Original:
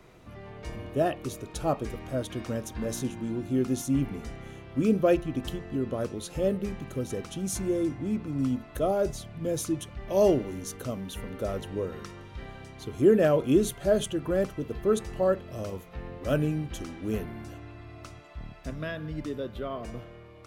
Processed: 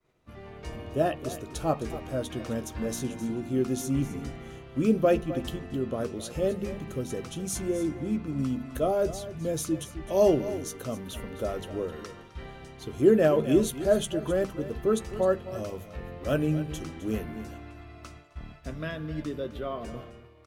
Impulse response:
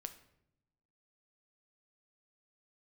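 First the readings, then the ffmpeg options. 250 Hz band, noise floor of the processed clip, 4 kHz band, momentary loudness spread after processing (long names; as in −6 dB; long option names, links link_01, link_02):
0.0 dB, −48 dBFS, +0.5 dB, 19 LU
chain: -filter_complex "[0:a]asplit=2[link_01][link_02];[link_02]adelay=13,volume=-11dB[link_03];[link_01][link_03]amix=inputs=2:normalize=0,bandreject=frequency=49.46:width_type=h:width=4,bandreject=frequency=98.92:width_type=h:width=4,bandreject=frequency=148.38:width_type=h:width=4,bandreject=frequency=197.84:width_type=h:width=4,bandreject=frequency=247.3:width_type=h:width=4,asplit=2[link_04][link_05];[link_05]aecho=0:1:260:0.2[link_06];[link_04][link_06]amix=inputs=2:normalize=0,agate=range=-33dB:threshold=-43dB:ratio=3:detection=peak"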